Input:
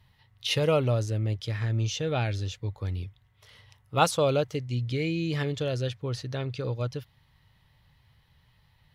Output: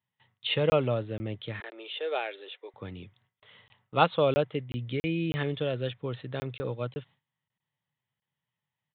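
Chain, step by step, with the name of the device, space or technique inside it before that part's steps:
call with lost packets (high-pass filter 140 Hz 24 dB per octave; downsampling to 8,000 Hz; dropped packets of 20 ms random)
0:01.60–0:02.74: Chebyshev band-pass filter 380–4,000 Hz, order 4
noise gate with hold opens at −53 dBFS

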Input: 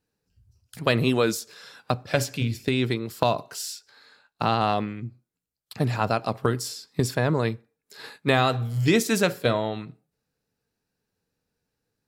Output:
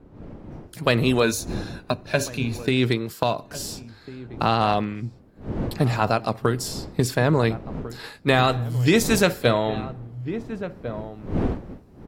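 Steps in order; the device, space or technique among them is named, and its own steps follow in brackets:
0:01.22–0:02.66: EQ curve with evenly spaced ripples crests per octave 1.5, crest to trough 9 dB
slap from a distant wall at 240 metres, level −16 dB
smartphone video outdoors (wind on the microphone 280 Hz −40 dBFS; automatic gain control gain up to 12 dB; level −3.5 dB; AAC 64 kbit/s 48,000 Hz)

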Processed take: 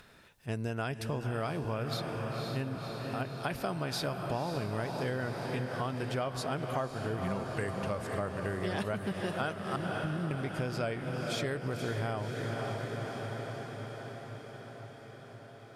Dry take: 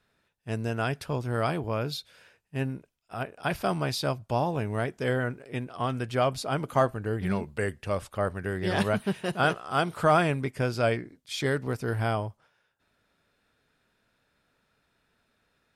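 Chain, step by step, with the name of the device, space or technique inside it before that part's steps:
0:09.76–0:10.31: inverse Chebyshev low-pass filter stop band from 630 Hz, stop band 40 dB
feedback delay with all-pass diffusion 527 ms, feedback 68%, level −7.5 dB
upward and downward compression (upward compression, threshold −46 dBFS; downward compressor 5 to 1, threshold −31 dBFS, peak gain reduction 12.5 dB)

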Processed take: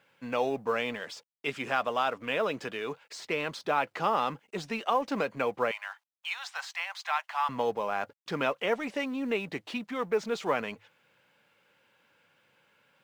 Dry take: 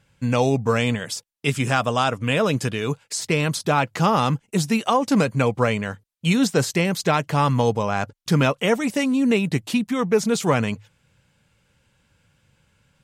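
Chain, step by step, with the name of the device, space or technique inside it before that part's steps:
phone line with mismatched companding (band-pass filter 390–3,200 Hz; mu-law and A-law mismatch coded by mu)
0:05.71–0:07.49: Butterworth high-pass 760 Hz 48 dB per octave
level −7 dB

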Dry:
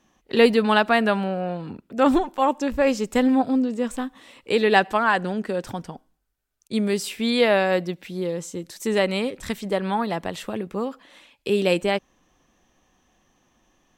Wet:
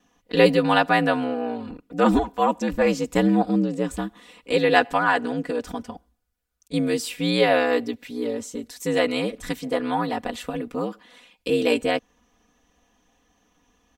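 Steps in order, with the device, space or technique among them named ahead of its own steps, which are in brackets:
ring-modulated robot voice (ring modulation 60 Hz; comb filter 4.1 ms, depth 94%)

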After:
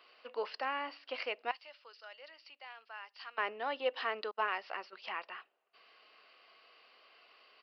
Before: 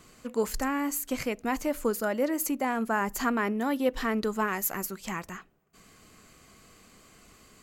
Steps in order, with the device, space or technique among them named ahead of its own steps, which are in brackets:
0:01.51–0:03.38: first difference
0:04.31–0:04.93: noise gate −34 dBFS, range −33 dB
low-shelf EQ 320 Hz +11.5 dB
musical greeting card (downsampling to 11,025 Hz; high-pass filter 560 Hz 24 dB per octave; parametric band 2,800 Hz +10 dB 0.23 octaves)
level −5 dB

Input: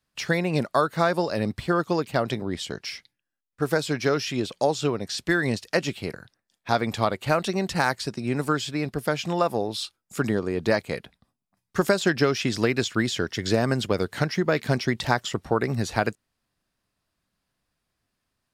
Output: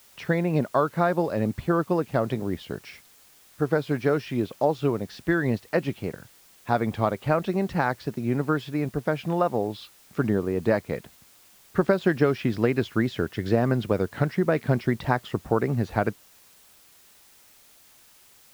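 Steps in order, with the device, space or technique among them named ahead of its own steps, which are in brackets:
cassette deck with a dirty head (head-to-tape spacing loss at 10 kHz 35 dB; tape wow and flutter; white noise bed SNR 29 dB)
level +2 dB

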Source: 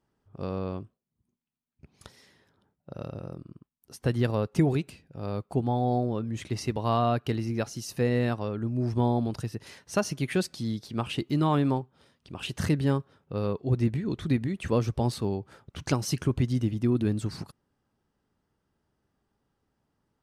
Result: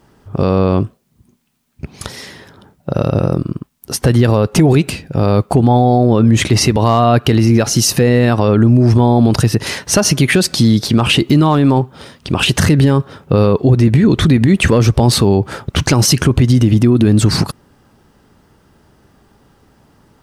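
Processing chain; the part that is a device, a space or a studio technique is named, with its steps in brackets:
loud club master (downward compressor 2 to 1, threshold −28 dBFS, peak gain reduction 6 dB; hard clipping −20 dBFS, distortion −29 dB; boost into a limiter +28 dB)
level −2 dB

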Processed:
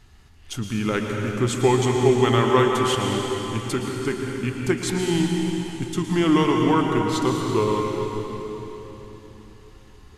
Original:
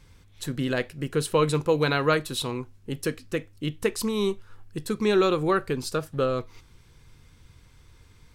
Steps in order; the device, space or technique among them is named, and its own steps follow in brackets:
slowed and reverbed (speed change −18%; convolution reverb RT60 4.0 s, pre-delay 106 ms, DRR 0.5 dB)
level +2 dB

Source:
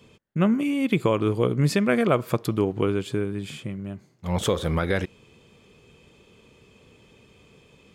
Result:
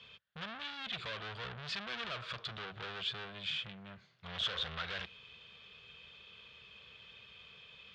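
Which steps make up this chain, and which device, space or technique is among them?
scooped metal amplifier (tube saturation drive 36 dB, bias 0.4; loudspeaker in its box 91–3,900 Hz, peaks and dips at 94 Hz −8 dB, 140 Hz −5 dB, 860 Hz −5 dB, 1,500 Hz +3 dB, 2,100 Hz −4 dB, 3,500 Hz +4 dB; guitar amp tone stack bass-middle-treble 10-0-10)
level +9 dB

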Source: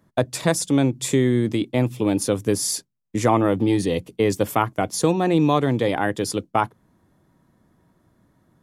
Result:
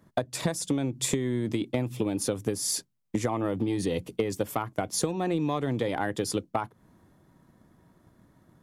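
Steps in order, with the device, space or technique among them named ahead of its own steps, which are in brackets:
drum-bus smash (transient designer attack +6 dB, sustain +2 dB; downward compressor 12 to 1, threshold −23 dBFS, peak gain reduction 15.5 dB; soft clipping −13 dBFS, distortion −21 dB)

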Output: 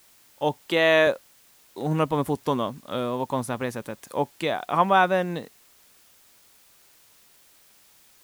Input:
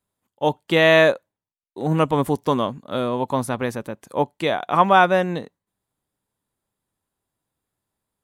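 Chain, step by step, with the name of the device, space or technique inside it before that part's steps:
0:00.63–0:01.07: high-pass filter 220 Hz
noise-reduction cassette on a plain deck (one half of a high-frequency compander encoder only; tape wow and flutter 28 cents; white noise bed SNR 30 dB)
level −4.5 dB

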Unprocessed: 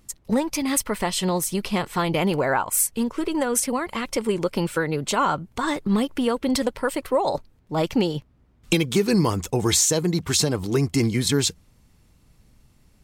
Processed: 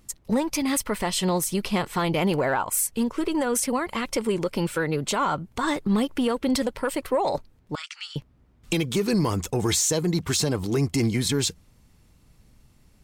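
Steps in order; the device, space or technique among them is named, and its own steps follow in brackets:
soft clipper into limiter (soft clipping −10.5 dBFS, distortion −24 dB; brickwall limiter −15.5 dBFS, peak gain reduction 4 dB)
0:07.75–0:08.16: Chebyshev band-pass filter 1,300–9,000 Hz, order 4

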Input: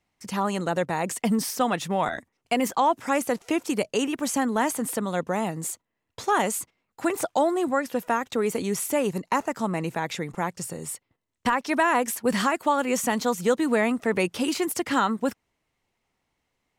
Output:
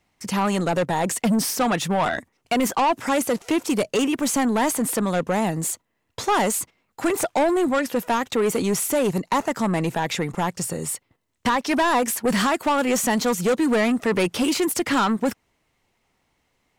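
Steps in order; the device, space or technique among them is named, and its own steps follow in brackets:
saturation between pre-emphasis and de-emphasis (high-shelf EQ 8,500 Hz +7 dB; soft clipping −23 dBFS, distortion −10 dB; high-shelf EQ 8,500 Hz −7 dB)
level +7.5 dB

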